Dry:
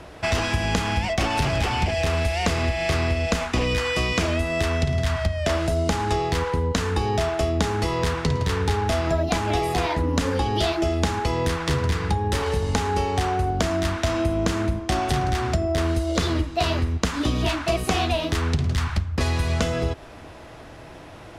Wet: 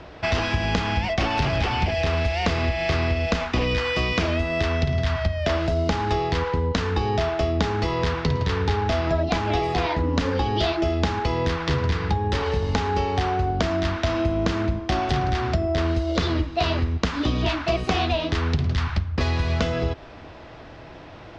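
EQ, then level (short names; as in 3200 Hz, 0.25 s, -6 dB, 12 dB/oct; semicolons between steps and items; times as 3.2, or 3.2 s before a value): LPF 5300 Hz 24 dB/oct; 0.0 dB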